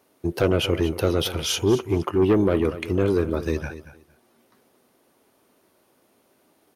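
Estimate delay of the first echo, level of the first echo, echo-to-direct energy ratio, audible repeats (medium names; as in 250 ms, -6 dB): 231 ms, -14.0 dB, -14.0 dB, 2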